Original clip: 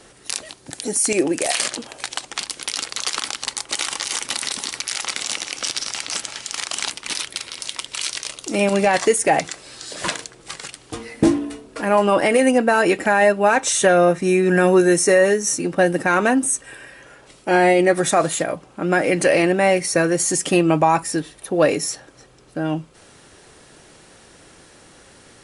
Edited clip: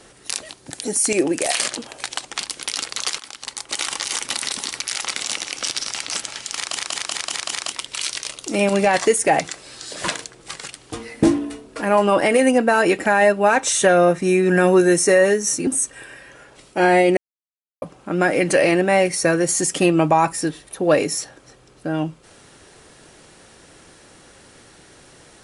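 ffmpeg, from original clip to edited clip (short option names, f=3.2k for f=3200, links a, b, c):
-filter_complex "[0:a]asplit=11[a][b][c][d][e][f][g][h][i][j][k];[a]atrim=end=3.18,asetpts=PTS-STARTPTS,afade=t=out:st=3.176:d=0.004:c=hsin:silence=0.177828[l];[b]atrim=start=3.18:end=6.772,asetpts=PTS-STARTPTS,afade=t=in:d=0.7:silence=0.177828[m];[c]atrim=start=6.578:end=6.772[n];[d]atrim=start=6.578:end=6.772[o];[e]atrim=start=6.578:end=6.772[p];[f]atrim=start=6.578:end=6.772[q];[g]atrim=start=6.578:end=6.772[r];[h]atrim=start=7.718:end=15.672[s];[i]atrim=start=16.378:end=17.88,asetpts=PTS-STARTPTS,afade=t=out:st=1.498:d=0.004:c=hsin[t];[j]atrim=start=17.88:end=18.53,asetpts=PTS-STARTPTS,volume=0[u];[k]atrim=start=18.53,asetpts=PTS-STARTPTS,afade=t=in:d=0.004:c=hsin[v];[l][m]concat=n=2:v=0:a=1[w];[w][n]acrossfade=d=0.004:c1=hsin:c2=hsin[x];[x][o]acrossfade=d=0.004:c1=hsin:c2=hsin[y];[y][p]acrossfade=d=0.004:c1=hsin:c2=hsin[z];[z][q]acrossfade=d=0.004:c1=hsin:c2=hsin[aa];[aa][r]acrossfade=d=0.004:c1=hsin:c2=hsin[ab];[ab][s]acrossfade=d=0.004:c1=hsin:c2=hsin[ac];[t][u][v]concat=n=3:v=0:a=1[ad];[ac][ad]acrossfade=d=0.004:c1=hsin:c2=hsin"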